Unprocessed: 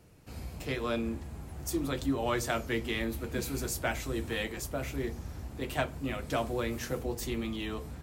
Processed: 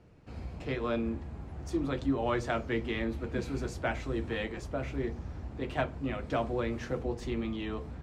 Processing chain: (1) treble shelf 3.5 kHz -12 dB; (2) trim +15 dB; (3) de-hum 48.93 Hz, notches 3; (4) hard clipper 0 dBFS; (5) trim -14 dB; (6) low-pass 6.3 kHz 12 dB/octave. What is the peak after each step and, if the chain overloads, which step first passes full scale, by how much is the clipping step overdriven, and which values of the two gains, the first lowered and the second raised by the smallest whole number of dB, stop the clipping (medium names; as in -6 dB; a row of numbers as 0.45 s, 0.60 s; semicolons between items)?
-18.0 dBFS, -3.0 dBFS, -3.5 dBFS, -3.5 dBFS, -17.5 dBFS, -17.5 dBFS; nothing clips